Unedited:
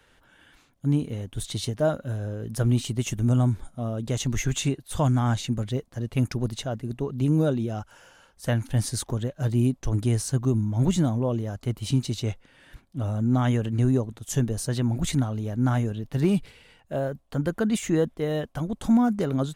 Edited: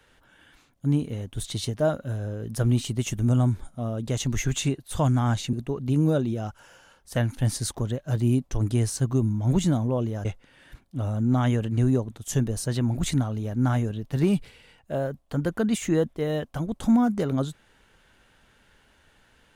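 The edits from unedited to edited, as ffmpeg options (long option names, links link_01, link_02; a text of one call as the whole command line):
ffmpeg -i in.wav -filter_complex "[0:a]asplit=3[link_01][link_02][link_03];[link_01]atrim=end=5.532[link_04];[link_02]atrim=start=6.848:end=11.572[link_05];[link_03]atrim=start=12.258[link_06];[link_04][link_05]acrossfade=duration=0.004:curve1=hsin:curve2=hsin[link_07];[link_07][link_06]acrossfade=duration=0.004:curve1=hsin:curve2=hsin" out.wav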